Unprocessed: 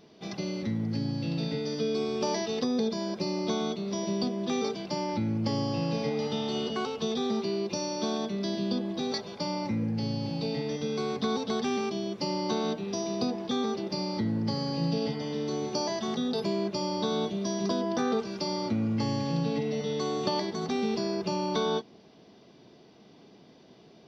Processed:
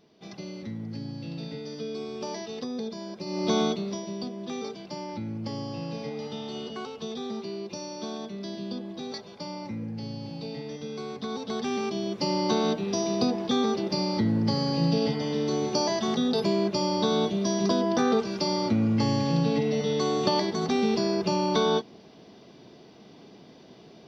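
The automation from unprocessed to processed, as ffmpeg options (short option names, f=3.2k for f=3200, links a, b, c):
-af "volume=16dB,afade=t=in:st=3.25:d=0.34:silence=0.251189,afade=t=out:st=3.59:d=0.44:silence=0.266073,afade=t=in:st=11.27:d=1.14:silence=0.334965"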